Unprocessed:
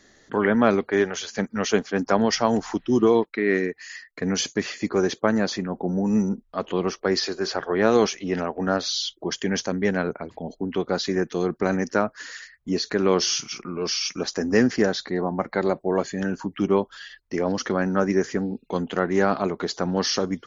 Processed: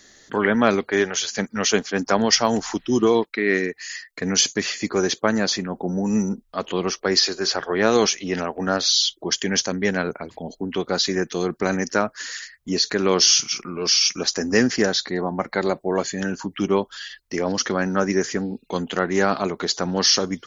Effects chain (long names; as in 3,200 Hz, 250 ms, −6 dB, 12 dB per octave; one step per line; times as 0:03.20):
high-shelf EQ 2,400 Hz +10.5 dB